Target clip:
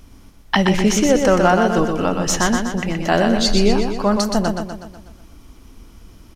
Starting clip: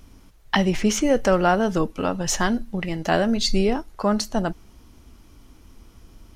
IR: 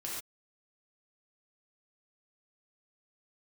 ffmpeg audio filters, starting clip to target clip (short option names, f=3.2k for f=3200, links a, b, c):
-af "aecho=1:1:123|246|369|492|615|738|861:0.562|0.292|0.152|0.0791|0.0411|0.0214|0.0111,volume=3.5dB"